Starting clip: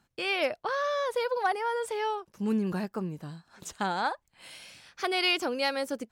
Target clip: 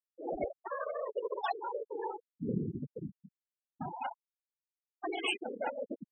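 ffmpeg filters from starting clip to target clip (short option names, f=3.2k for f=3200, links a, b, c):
-af "afftfilt=real='hypot(re,im)*cos(2*PI*random(0))':imag='hypot(re,im)*sin(2*PI*random(1))':win_size=512:overlap=0.75,acrusher=samples=11:mix=1:aa=0.000001:lfo=1:lforange=11:lforate=0.36,afftfilt=real='re*gte(hypot(re,im),0.0562)':imag='im*gte(hypot(re,im),0.0562)':win_size=1024:overlap=0.75"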